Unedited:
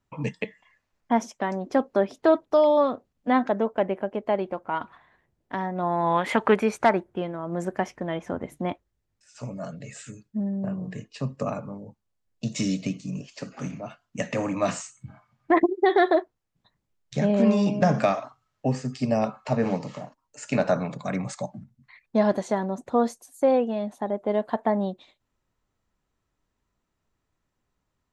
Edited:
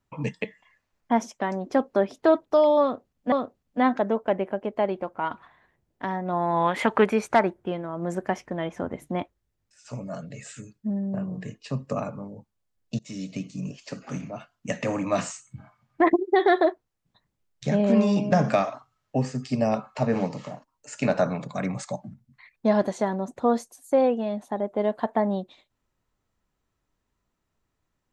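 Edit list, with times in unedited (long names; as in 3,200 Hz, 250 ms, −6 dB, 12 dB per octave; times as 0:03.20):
0:02.82–0:03.32: repeat, 2 plays
0:12.49–0:13.13: fade in linear, from −22 dB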